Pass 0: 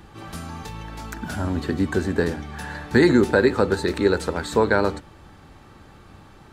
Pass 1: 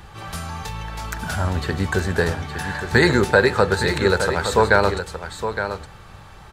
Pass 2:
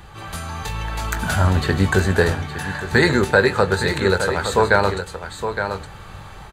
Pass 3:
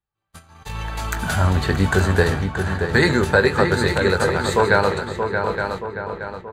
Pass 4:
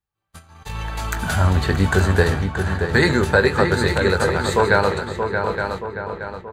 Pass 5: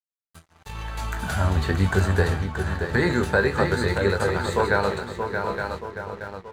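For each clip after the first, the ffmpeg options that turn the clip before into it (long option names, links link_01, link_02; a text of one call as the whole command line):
ffmpeg -i in.wav -af "equalizer=frequency=280:width_type=o:width=0.88:gain=-14,aecho=1:1:865:0.355,volume=6dB" out.wav
ffmpeg -i in.wav -filter_complex "[0:a]bandreject=frequency=5400:width=8.7,dynaudnorm=framelen=430:gausssize=3:maxgain=5dB,asplit=2[link_01][link_02];[link_02]adelay=21,volume=-11dB[link_03];[link_01][link_03]amix=inputs=2:normalize=0" out.wav
ffmpeg -i in.wav -filter_complex "[0:a]agate=range=-46dB:threshold=-26dB:ratio=16:detection=peak,asplit=2[link_01][link_02];[link_02]adelay=627,lowpass=frequency=2700:poles=1,volume=-6dB,asplit=2[link_03][link_04];[link_04]adelay=627,lowpass=frequency=2700:poles=1,volume=0.51,asplit=2[link_05][link_06];[link_06]adelay=627,lowpass=frequency=2700:poles=1,volume=0.51,asplit=2[link_07][link_08];[link_08]adelay=627,lowpass=frequency=2700:poles=1,volume=0.51,asplit=2[link_09][link_10];[link_10]adelay=627,lowpass=frequency=2700:poles=1,volume=0.51,asplit=2[link_11][link_12];[link_12]adelay=627,lowpass=frequency=2700:poles=1,volume=0.51[link_13];[link_03][link_05][link_07][link_09][link_11][link_13]amix=inputs=6:normalize=0[link_14];[link_01][link_14]amix=inputs=2:normalize=0,volume=-1dB" out.wav
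ffmpeg -i in.wav -af "equalizer=frequency=74:width_type=o:width=0.38:gain=4" out.wav
ffmpeg -i in.wav -filter_complex "[0:a]acrossover=split=2000[link_01][link_02];[link_02]alimiter=limit=-21dB:level=0:latency=1:release=45[link_03];[link_01][link_03]amix=inputs=2:normalize=0,flanger=delay=9.3:depth=8:regen=60:speed=0.48:shape=triangular,aeval=exprs='sgn(val(0))*max(abs(val(0))-0.00398,0)':channel_layout=same" out.wav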